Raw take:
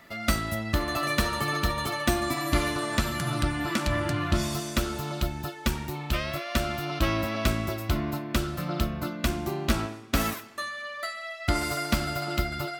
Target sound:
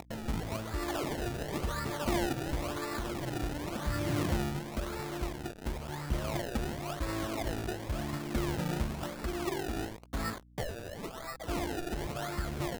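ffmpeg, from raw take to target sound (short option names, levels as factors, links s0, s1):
-af "lowpass=f=2300:w=0.5412,lowpass=f=2300:w=1.3066,equalizer=f=410:w=1.8:g=3,alimiter=limit=0.112:level=0:latency=1:release=87,acompressor=mode=upward:threshold=0.0178:ratio=2.5,aresample=11025,acrusher=bits=5:mix=0:aa=0.000001,aresample=44100,aphaser=in_gain=1:out_gain=1:delay=3:decay=0.46:speed=0.47:type=sinusoidal,acrusher=samples=28:mix=1:aa=0.000001:lfo=1:lforange=28:lforate=0.95,aeval=exprs='val(0)+0.00316*(sin(2*PI*60*n/s)+sin(2*PI*2*60*n/s)/2+sin(2*PI*3*60*n/s)/3+sin(2*PI*4*60*n/s)/4+sin(2*PI*5*60*n/s)/5)':c=same,volume=0.447"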